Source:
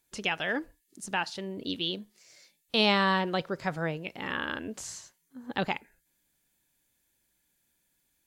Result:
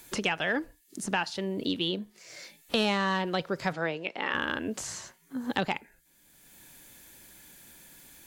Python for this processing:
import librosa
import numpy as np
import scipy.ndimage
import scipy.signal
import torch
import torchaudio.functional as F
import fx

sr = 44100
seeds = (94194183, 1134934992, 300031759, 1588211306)

p1 = fx.fold_sine(x, sr, drive_db=5, ceiling_db=-11.0)
p2 = x + F.gain(torch.from_numpy(p1), -4.5).numpy()
p3 = fx.bandpass_edges(p2, sr, low_hz=fx.line((3.72, 200.0), (4.33, 440.0)), high_hz=5000.0, at=(3.72, 4.33), fade=0.02)
p4 = fx.band_squash(p3, sr, depth_pct=70)
y = F.gain(torch.from_numpy(p4), -6.5).numpy()